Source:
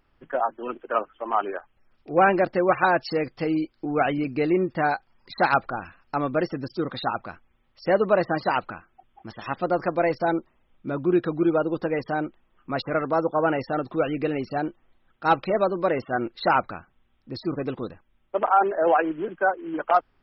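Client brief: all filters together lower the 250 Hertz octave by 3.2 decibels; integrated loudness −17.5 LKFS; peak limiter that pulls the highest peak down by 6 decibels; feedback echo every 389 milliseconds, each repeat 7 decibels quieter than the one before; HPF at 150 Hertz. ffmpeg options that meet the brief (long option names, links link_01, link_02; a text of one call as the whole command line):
ffmpeg -i in.wav -af "highpass=150,equalizer=frequency=250:width_type=o:gain=-4.5,alimiter=limit=-13.5dB:level=0:latency=1,aecho=1:1:389|778|1167|1556|1945:0.447|0.201|0.0905|0.0407|0.0183,volume=9.5dB" out.wav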